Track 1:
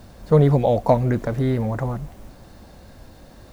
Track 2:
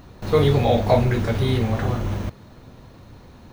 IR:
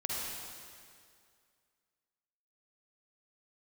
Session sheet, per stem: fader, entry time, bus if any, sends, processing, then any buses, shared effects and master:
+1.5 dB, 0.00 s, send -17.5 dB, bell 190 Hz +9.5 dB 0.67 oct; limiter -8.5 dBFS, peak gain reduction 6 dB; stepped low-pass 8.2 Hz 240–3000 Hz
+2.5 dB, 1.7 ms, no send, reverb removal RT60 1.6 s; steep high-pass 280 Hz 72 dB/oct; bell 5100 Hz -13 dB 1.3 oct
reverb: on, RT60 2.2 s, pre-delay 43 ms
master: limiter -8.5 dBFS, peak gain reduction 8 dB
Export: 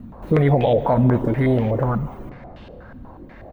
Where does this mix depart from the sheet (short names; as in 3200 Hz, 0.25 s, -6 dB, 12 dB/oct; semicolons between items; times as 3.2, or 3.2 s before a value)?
stem 1: missing bell 190 Hz +9.5 dB 0.67 oct; stem 2 +2.5 dB -> -6.5 dB